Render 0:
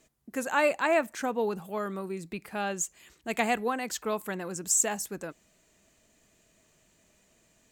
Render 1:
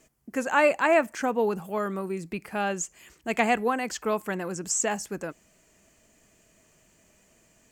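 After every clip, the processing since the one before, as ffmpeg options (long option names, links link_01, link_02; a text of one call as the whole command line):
ffmpeg -i in.wav -filter_complex "[0:a]acrossover=split=7100[link_01][link_02];[link_02]acompressor=threshold=-53dB:ratio=4:attack=1:release=60[link_03];[link_01][link_03]amix=inputs=2:normalize=0,equalizer=frequency=3800:width=4.9:gain=-8.5,volume=4dB" out.wav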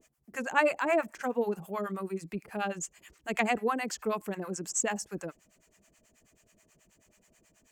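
ffmpeg -i in.wav -filter_complex "[0:a]acrossover=split=660[link_01][link_02];[link_01]aeval=exprs='val(0)*(1-1/2+1/2*cos(2*PI*9.3*n/s))':channel_layout=same[link_03];[link_02]aeval=exprs='val(0)*(1-1/2-1/2*cos(2*PI*9.3*n/s))':channel_layout=same[link_04];[link_03][link_04]amix=inputs=2:normalize=0" out.wav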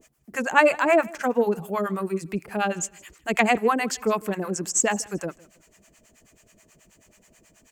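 ffmpeg -i in.wav -af "aecho=1:1:158|316:0.0708|0.0205,volume=8dB" out.wav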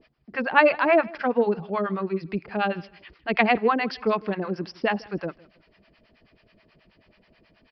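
ffmpeg -i in.wav -af "aresample=11025,aresample=44100" out.wav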